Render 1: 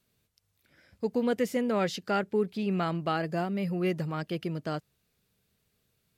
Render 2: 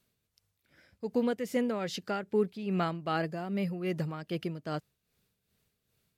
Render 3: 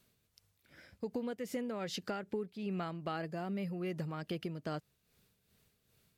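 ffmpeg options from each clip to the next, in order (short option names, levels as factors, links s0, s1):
-af "tremolo=f=2.5:d=0.6"
-af "acompressor=threshold=0.01:ratio=6,volume=1.58"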